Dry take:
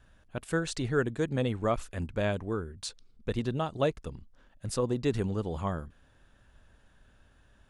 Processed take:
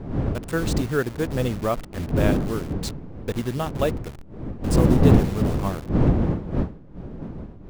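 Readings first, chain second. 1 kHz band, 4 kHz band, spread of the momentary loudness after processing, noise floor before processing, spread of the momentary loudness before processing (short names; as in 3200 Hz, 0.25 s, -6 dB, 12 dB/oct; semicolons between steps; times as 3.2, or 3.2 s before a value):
+6.5 dB, +4.5 dB, 18 LU, -63 dBFS, 13 LU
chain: level-crossing sampler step -36.5 dBFS; wind noise 230 Hz -28 dBFS; gain +4.5 dB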